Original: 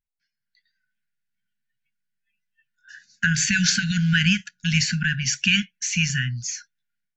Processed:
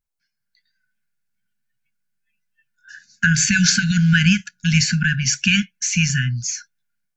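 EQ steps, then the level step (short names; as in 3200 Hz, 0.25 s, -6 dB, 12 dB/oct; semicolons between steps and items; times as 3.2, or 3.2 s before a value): bell 3200 Hz -5.5 dB 0.84 oct; notch 1900 Hz, Q 9.5; +5.5 dB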